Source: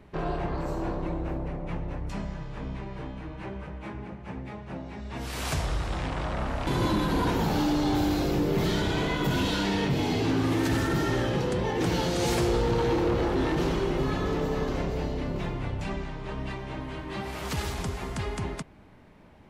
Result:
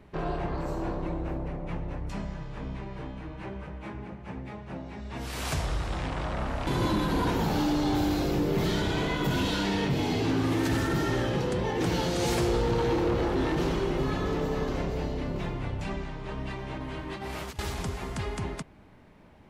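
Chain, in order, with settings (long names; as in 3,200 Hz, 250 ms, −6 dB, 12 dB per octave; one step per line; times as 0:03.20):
0:16.58–0:17.59: compressor whose output falls as the input rises −35 dBFS, ratio −0.5
level −1 dB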